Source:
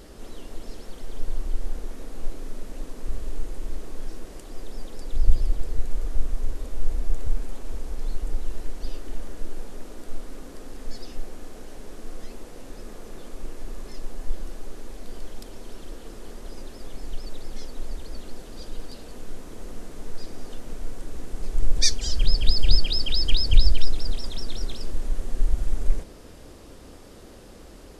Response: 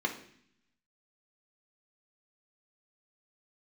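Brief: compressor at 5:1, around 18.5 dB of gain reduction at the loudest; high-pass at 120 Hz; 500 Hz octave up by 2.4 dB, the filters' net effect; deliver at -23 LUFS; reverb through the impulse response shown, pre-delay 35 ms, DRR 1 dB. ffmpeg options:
-filter_complex "[0:a]highpass=120,equalizer=f=500:t=o:g=3,acompressor=threshold=-39dB:ratio=5,asplit=2[a][b];[1:a]atrim=start_sample=2205,adelay=35[c];[b][c]afir=irnorm=-1:irlink=0,volume=-7.5dB[d];[a][d]amix=inputs=2:normalize=0,volume=17.5dB"

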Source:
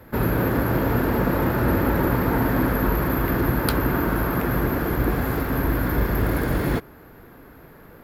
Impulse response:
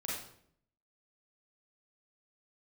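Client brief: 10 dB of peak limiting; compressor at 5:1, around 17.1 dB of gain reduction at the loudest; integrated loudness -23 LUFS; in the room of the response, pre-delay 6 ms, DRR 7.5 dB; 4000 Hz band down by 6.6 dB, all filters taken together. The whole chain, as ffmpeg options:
-filter_complex "[0:a]equalizer=f=4k:t=o:g=-8.5,acompressor=threshold=-37dB:ratio=5,alimiter=level_in=9dB:limit=-24dB:level=0:latency=1,volume=-9dB,asplit=2[a][b];[1:a]atrim=start_sample=2205,adelay=6[c];[b][c]afir=irnorm=-1:irlink=0,volume=-10dB[d];[a][d]amix=inputs=2:normalize=0,volume=19dB"

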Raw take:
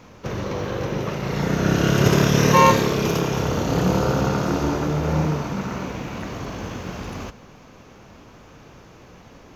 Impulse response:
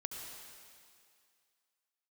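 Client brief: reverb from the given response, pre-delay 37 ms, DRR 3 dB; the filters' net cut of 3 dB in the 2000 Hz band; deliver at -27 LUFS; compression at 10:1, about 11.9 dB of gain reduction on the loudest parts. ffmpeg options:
-filter_complex "[0:a]equalizer=f=2k:t=o:g=-4,acompressor=threshold=-22dB:ratio=10,asplit=2[a][b];[1:a]atrim=start_sample=2205,adelay=37[c];[b][c]afir=irnorm=-1:irlink=0,volume=-2dB[d];[a][d]amix=inputs=2:normalize=0,volume=-0.5dB"

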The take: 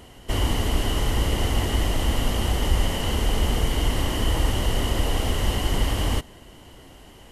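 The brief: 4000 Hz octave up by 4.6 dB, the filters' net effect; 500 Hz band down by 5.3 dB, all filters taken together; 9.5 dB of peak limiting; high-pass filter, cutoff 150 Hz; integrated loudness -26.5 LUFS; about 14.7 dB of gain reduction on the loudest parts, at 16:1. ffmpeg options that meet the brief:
-af "highpass=150,equalizer=f=500:t=o:g=-7,equalizer=f=4k:t=o:g=7.5,acompressor=threshold=-39dB:ratio=16,volume=18.5dB,alimiter=limit=-18.5dB:level=0:latency=1"

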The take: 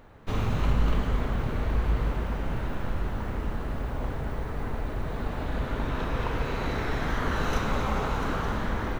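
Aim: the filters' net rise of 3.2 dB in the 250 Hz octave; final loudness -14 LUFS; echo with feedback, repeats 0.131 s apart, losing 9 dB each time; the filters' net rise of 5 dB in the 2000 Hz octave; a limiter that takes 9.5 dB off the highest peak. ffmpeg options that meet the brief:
-af "equalizer=f=250:t=o:g=4,equalizer=f=2k:t=o:g=6.5,alimiter=limit=-21.5dB:level=0:latency=1,aecho=1:1:131|262|393|524:0.355|0.124|0.0435|0.0152,volume=17.5dB"

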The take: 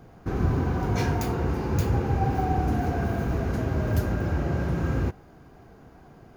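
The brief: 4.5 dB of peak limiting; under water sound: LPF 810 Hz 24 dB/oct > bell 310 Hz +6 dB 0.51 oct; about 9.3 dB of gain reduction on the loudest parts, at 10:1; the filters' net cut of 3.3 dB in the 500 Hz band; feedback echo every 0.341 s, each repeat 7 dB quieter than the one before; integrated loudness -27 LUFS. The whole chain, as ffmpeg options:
-af "equalizer=f=500:t=o:g=-7.5,acompressor=threshold=-29dB:ratio=10,alimiter=level_in=2dB:limit=-24dB:level=0:latency=1,volume=-2dB,lowpass=f=810:w=0.5412,lowpass=f=810:w=1.3066,equalizer=f=310:t=o:w=0.51:g=6,aecho=1:1:341|682|1023|1364|1705:0.447|0.201|0.0905|0.0407|0.0183,volume=7dB"

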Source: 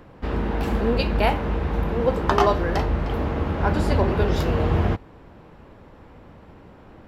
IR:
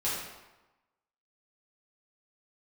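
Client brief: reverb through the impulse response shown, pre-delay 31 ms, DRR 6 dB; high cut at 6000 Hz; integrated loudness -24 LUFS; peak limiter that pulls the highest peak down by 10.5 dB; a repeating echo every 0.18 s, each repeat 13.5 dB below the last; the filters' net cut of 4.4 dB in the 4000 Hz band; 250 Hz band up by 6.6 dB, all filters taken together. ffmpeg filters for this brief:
-filter_complex "[0:a]lowpass=6k,equalizer=f=250:t=o:g=8.5,equalizer=f=4k:t=o:g=-5.5,alimiter=limit=-13.5dB:level=0:latency=1,aecho=1:1:180|360:0.211|0.0444,asplit=2[a][b];[1:a]atrim=start_sample=2205,adelay=31[c];[b][c]afir=irnorm=-1:irlink=0,volume=-13.5dB[d];[a][d]amix=inputs=2:normalize=0,volume=-1.5dB"

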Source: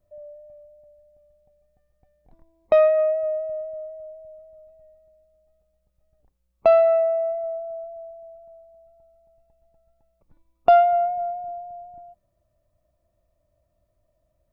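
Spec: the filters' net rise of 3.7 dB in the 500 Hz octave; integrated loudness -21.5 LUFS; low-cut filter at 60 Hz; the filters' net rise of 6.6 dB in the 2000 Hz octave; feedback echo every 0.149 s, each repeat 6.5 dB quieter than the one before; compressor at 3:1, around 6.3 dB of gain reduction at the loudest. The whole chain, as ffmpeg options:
-af "highpass=60,equalizer=f=500:t=o:g=5,equalizer=f=2k:t=o:g=8,acompressor=threshold=-16dB:ratio=3,aecho=1:1:149|298|447|596|745|894:0.473|0.222|0.105|0.0491|0.0231|0.0109,volume=-1.5dB"

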